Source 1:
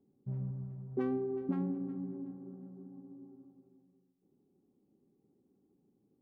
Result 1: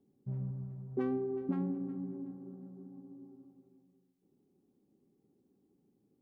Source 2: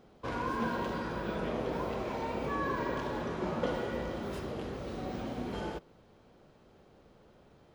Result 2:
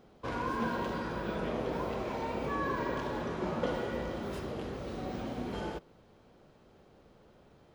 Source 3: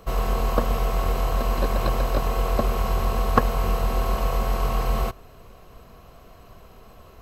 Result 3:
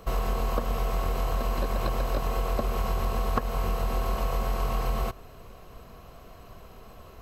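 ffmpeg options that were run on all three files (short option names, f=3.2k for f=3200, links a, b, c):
-af "acompressor=threshold=-23dB:ratio=6"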